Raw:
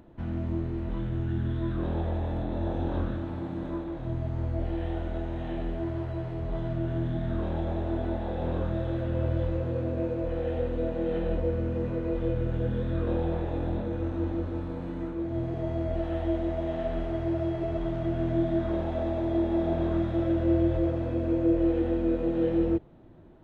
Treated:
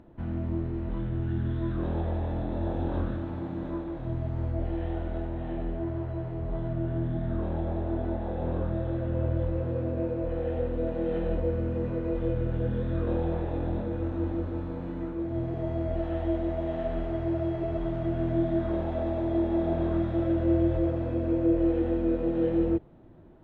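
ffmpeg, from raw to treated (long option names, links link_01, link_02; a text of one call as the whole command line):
ffmpeg -i in.wav -af "asetnsamples=nb_out_samples=441:pad=0,asendcmd='1.22 lowpass f 3400;4.52 lowpass f 2400;5.27 lowpass f 1500;9.57 lowpass f 2100;10.87 lowpass f 3100',lowpass=frequency=2500:poles=1" out.wav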